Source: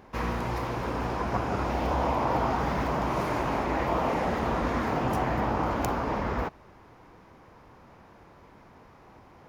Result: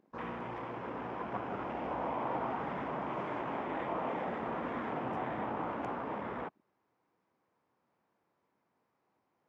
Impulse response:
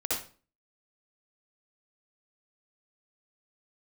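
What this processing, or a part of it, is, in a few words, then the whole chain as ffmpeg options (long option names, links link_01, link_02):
over-cleaned archive recording: -af "highpass=170,lowpass=7500,afwtdn=0.01,volume=-8.5dB"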